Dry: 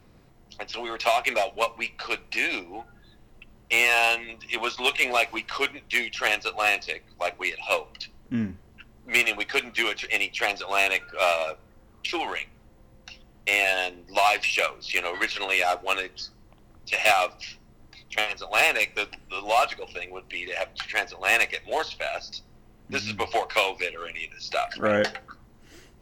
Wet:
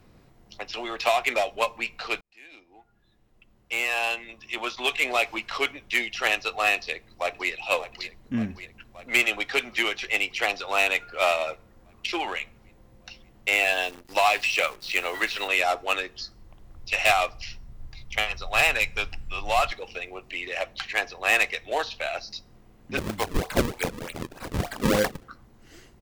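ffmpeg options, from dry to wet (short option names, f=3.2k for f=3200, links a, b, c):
-filter_complex "[0:a]asplit=2[a][b];[b]afade=t=in:st=6.76:d=0.01,afade=t=out:st=7.49:d=0.01,aecho=0:1:580|1160|1740|2320|2900|3480|4060|4640|5220|5800:0.251189|0.175832|0.123082|0.0861577|0.0603104|0.0422173|0.0295521|0.0206865|0.0144805|0.0101364[c];[a][c]amix=inputs=2:normalize=0,asettb=1/sr,asplit=3[d][e][f];[d]atrim=end=13.554[g];[e]atrim=start=13.55:end=15.48,asetpts=PTS-STARTPTS,afade=t=in:d=0.004:c=qsin,afade=t=out:st=1.926:d=0.004:c=qsin,acrusher=bits=8:dc=4:mix=0:aa=0.000001[h];[f]atrim=start=15.476[i];[g][h]acrossfade=d=0.004:c1=hsin:c2=qsin[j];[j][i]acrossfade=d=0.004:c1=qsin:c2=hsin,asettb=1/sr,asplit=3[k][l][m];[k]atrim=end=16.074[n];[l]atrim=start=16.07:end=19.72,asetpts=PTS-STARTPTS,afade=t=in:d=0.004:c=qsin,afade=t=out:st=3.646:d=0.004:c=qsin,asubboost=boost=11:cutoff=110[o];[m]atrim=start=19.716[p];[n][o]acrossfade=d=0.004:c1=hsin:c2=qsin[q];[q][p]acrossfade=d=0.004:c1=qsin:c2=hsin,asettb=1/sr,asplit=3[r][s][t];[r]atrim=end=22.974[u];[s]atrim=start=22.97:end=25.24,asetpts=PTS-STARTPTS,afade=t=in:d=0.004:c=qsin,afade=t=out:st=2.266:d=0.004:c=qsin,acrusher=samples=35:mix=1:aa=0.000001:lfo=1:lforange=56:lforate=3.3[v];[t]atrim=start=25.236[w];[u][v]acrossfade=d=0.004:c1=hsin:c2=qsin[x];[x][w]acrossfade=d=0.004:c1=qsin:c2=hsin,asplit=2[y][z];[y]atrim=end=2.21,asetpts=PTS-STARTPTS,afade=t=out:st=2.206:d=0.004:c=hsin[aa];[z]atrim=start=2.21,asetpts=PTS-STARTPTS,afade=t=in:d=3.32[ab];[aa][ab]concat=n=2:v=0:a=1"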